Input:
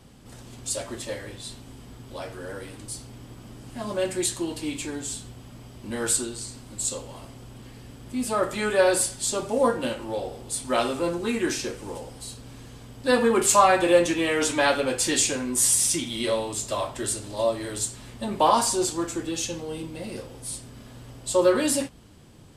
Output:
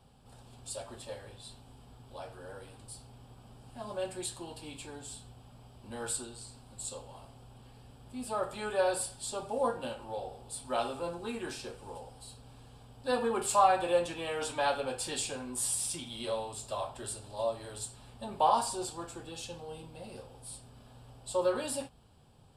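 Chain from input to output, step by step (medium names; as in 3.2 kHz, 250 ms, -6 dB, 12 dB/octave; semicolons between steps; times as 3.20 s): graphic EQ with 31 bands 200 Hz -5 dB, 315 Hz -11 dB, 800 Hz +7 dB, 2 kHz -11 dB, 6.3 kHz -11 dB, 12.5 kHz -7 dB; trim -9 dB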